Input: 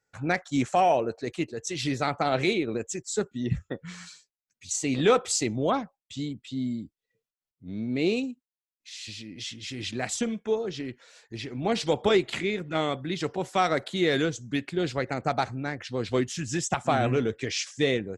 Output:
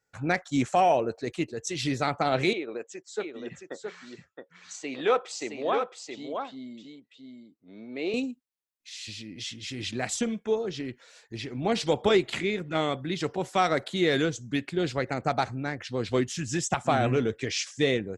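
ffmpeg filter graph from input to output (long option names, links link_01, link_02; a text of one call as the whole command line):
ffmpeg -i in.wav -filter_complex "[0:a]asettb=1/sr,asplit=3[link_01][link_02][link_03];[link_01]atrim=end=2.534[link_04];[link_02]atrim=start=2.53:end=8.14,asetpts=PTS-STARTPTS,afade=type=in:duration=0.004:curve=qsin,afade=type=out:start_time=5.606:duration=0.004:curve=qsin,highpass=460,lowpass=7700,aemphasis=mode=reproduction:type=75kf,aecho=1:1:669:0.531,atrim=end_sample=247401[link_05];[link_03]atrim=start=8.136[link_06];[link_04][link_05]acrossfade=duration=0.004:curve1=hsin:curve2=qsin[link_07];[link_07][link_06]acrossfade=duration=0.004:curve1=qsin:curve2=hsin" out.wav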